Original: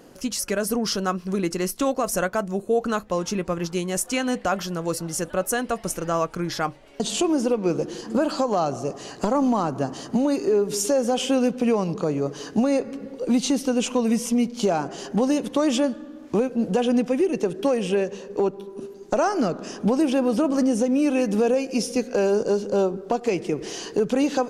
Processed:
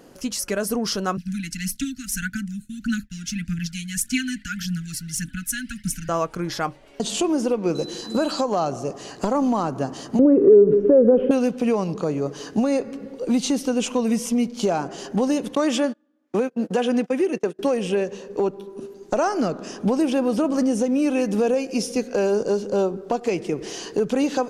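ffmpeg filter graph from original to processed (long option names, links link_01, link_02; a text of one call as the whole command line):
ffmpeg -i in.wav -filter_complex "[0:a]asettb=1/sr,asplit=3[link_01][link_02][link_03];[link_01]atrim=end=1.174[link_04];[link_02]atrim=start=1.17:end=6.09,asetpts=PTS-STARTPTS,afade=type=in:duration=0.004:curve=qsin,afade=type=out:start_time=4.916:duration=0.004:curve=qsin,agate=range=-33dB:threshold=-38dB:ratio=3:release=100:detection=peak,aphaser=in_gain=1:out_gain=1:delay=2.2:decay=0.5:speed=1.7:type=triangular,asuperstop=centerf=640:order=20:qfactor=0.54[link_05];[link_03]atrim=start=6.086[link_06];[link_04][link_05]acrossfade=duration=0.004:curve1=hsin:curve2=qsin[link_07];[link_07][link_06]acrossfade=duration=0.004:curve1=qsin:curve2=hsin,asettb=1/sr,asplit=3[link_08][link_09][link_10];[link_08]atrim=end=7.754[link_11];[link_09]atrim=start=7.75:end=8.41,asetpts=PTS-STARTPTS,afade=type=in:duration=0.004:curve=qsin,afade=type=out:start_time=0.656:duration=0.004:curve=qsin,acrossover=split=7800[link_12][link_13];[link_13]acompressor=threshold=-57dB:ratio=4:attack=1:release=60[link_14];[link_12][link_14]amix=inputs=2:normalize=0,aemphasis=mode=production:type=cd,aeval=exprs='val(0)+0.0126*sin(2*PI*4000*n/s)':channel_layout=same[link_15];[link_10]atrim=start=8.406[link_16];[link_11][link_15]acrossfade=duration=0.004:curve1=hsin:curve2=qsin[link_17];[link_17][link_16]acrossfade=duration=0.004:curve1=qsin:curve2=hsin,asettb=1/sr,asplit=3[link_18][link_19][link_20];[link_18]atrim=end=10.194[link_21];[link_19]atrim=start=10.19:end=11.31,asetpts=PTS-STARTPTS,afade=type=in:duration=0.004:curve=qsin,afade=type=out:start_time=1.116:duration=0.004:curve=qsin,lowpass=frequency=1600:width=0.5412,lowpass=frequency=1600:width=1.3066,lowshelf=frequency=620:width_type=q:width=3:gain=9,acompressor=threshold=-13dB:ratio=2:attack=3.2:release=140:knee=1:detection=peak[link_22];[link_20]atrim=start=11.306[link_23];[link_21][link_22]acrossfade=duration=0.004:curve1=hsin:curve2=qsin[link_24];[link_24][link_23]acrossfade=duration=0.004:curve1=qsin:curve2=hsin,asettb=1/sr,asplit=3[link_25][link_26][link_27];[link_25]atrim=end=15.554[link_28];[link_26]atrim=start=15.55:end=17.59,asetpts=PTS-STARTPTS,afade=type=in:duration=0.004:curve=qsin,afade=type=out:start_time=2.036:duration=0.004:curve=qsin,agate=range=-28dB:threshold=-28dB:ratio=16:release=100:detection=peak,highpass=180,equalizer=frequency=1700:width=1.4:gain=4.5[link_29];[link_27]atrim=start=17.586[link_30];[link_28][link_29]acrossfade=duration=0.004:curve1=hsin:curve2=qsin[link_31];[link_31][link_30]acrossfade=duration=0.004:curve1=qsin:curve2=hsin" out.wav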